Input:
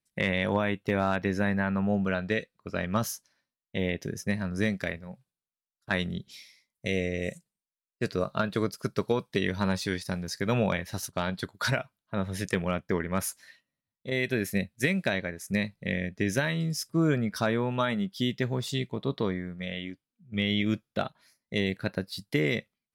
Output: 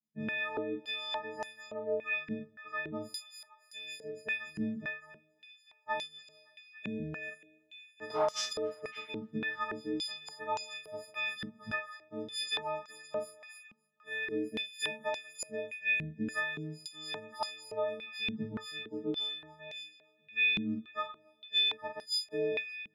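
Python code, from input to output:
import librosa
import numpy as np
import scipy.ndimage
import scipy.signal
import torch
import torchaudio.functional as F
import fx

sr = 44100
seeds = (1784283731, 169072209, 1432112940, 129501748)

y = fx.freq_snap(x, sr, grid_st=6)
y = fx.doubler(y, sr, ms=39.0, db=-5.0)
y = fx.rev_fdn(y, sr, rt60_s=1.5, lf_ratio=0.75, hf_ratio=0.5, size_ms=88.0, drr_db=19.0)
y = fx.leveller(y, sr, passes=3, at=(8.1, 8.53))
y = fx.echo_wet_highpass(y, sr, ms=282, feedback_pct=64, hz=1400.0, wet_db=-15.5)
y = fx.filter_held_bandpass(y, sr, hz=3.5, low_hz=210.0, high_hz=5900.0)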